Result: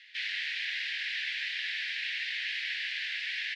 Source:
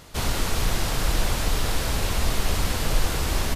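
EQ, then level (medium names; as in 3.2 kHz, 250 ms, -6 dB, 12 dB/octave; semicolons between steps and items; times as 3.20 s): steep high-pass 1.7 kHz 96 dB/octave; low-pass 5.2 kHz 12 dB/octave; distance through air 370 m; +7.5 dB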